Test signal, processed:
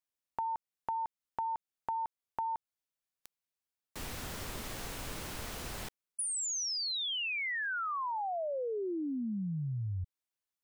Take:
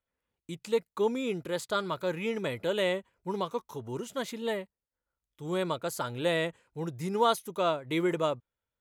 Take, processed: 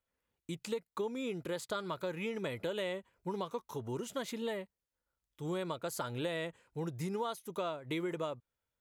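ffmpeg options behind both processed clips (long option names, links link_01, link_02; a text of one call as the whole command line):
ffmpeg -i in.wav -af "acompressor=threshold=-34dB:ratio=6" out.wav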